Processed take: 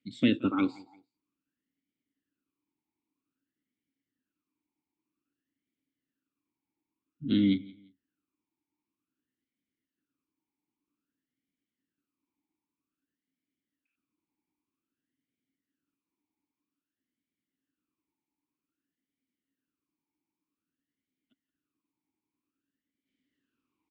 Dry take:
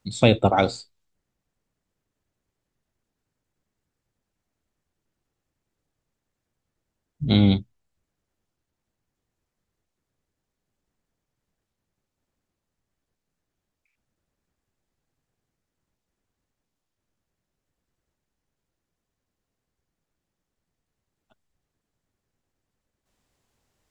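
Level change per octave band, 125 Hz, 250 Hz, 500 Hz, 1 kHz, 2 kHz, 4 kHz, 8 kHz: -15.0 dB, -4.0 dB, -15.5 dB, under -15 dB, -9.0 dB, -10.0 dB, n/a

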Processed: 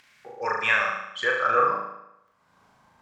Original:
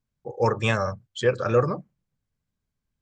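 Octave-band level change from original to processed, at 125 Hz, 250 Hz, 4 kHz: -22.0, -13.5, +1.5 dB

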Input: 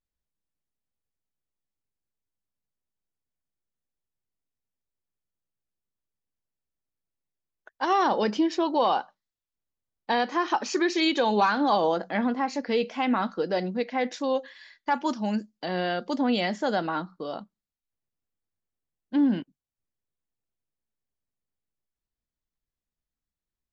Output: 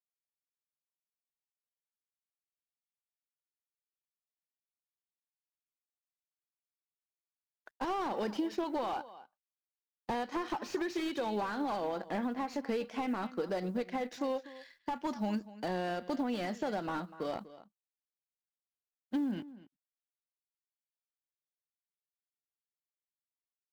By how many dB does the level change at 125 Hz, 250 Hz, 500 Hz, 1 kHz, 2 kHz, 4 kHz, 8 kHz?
-7.0 dB, -8.5 dB, -9.0 dB, -11.0 dB, -12.0 dB, -13.5 dB, n/a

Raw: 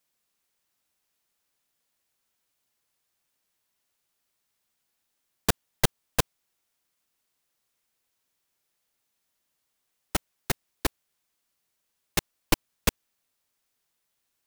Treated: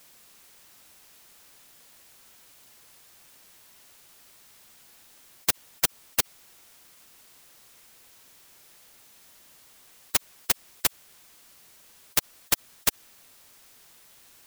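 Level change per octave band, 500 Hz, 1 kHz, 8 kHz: -6.5, -3.0, +5.0 dB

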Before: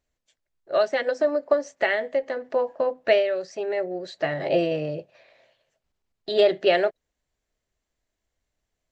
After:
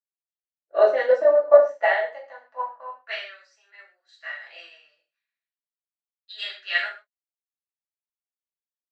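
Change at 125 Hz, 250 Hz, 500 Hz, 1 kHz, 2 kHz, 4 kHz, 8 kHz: under -35 dB, under -15 dB, +0.5 dB, +1.0 dB, +1.5 dB, -2.0 dB, n/a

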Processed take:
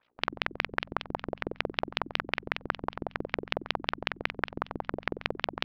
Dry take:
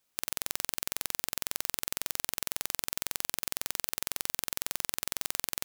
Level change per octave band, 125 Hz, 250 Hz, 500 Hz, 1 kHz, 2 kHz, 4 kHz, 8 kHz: +9.0 dB, +11.5 dB, +11.5 dB, +10.0 dB, +8.0 dB, +1.0 dB, under -25 dB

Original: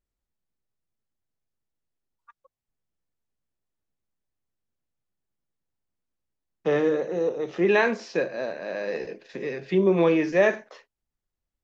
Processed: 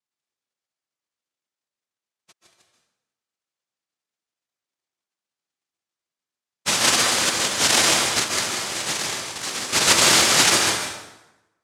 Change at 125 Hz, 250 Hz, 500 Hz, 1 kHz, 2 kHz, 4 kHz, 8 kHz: -1.0 dB, -5.0 dB, -7.0 dB, +9.0 dB, +8.0 dB, +25.5 dB, n/a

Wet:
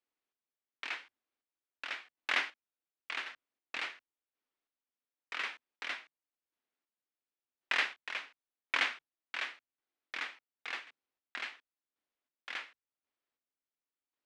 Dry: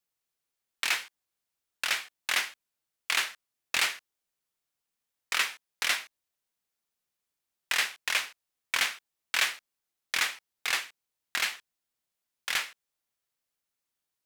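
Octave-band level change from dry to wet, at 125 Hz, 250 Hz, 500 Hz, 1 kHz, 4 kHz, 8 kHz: n/a, -2.5 dB, -5.0 dB, -6.0 dB, -10.5 dB, -21.5 dB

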